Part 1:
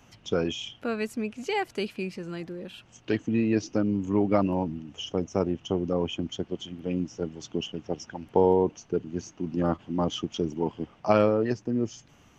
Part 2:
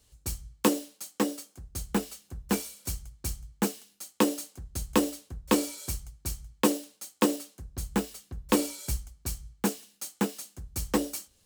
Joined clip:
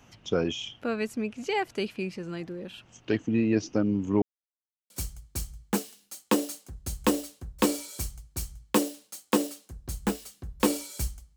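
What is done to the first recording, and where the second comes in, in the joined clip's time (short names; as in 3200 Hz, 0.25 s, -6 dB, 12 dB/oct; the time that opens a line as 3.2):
part 1
4.22–4.9 mute
4.9 switch to part 2 from 2.79 s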